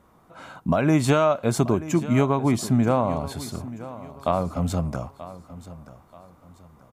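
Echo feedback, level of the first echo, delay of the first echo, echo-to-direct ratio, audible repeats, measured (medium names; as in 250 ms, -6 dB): 35%, -16.0 dB, 932 ms, -15.5 dB, 3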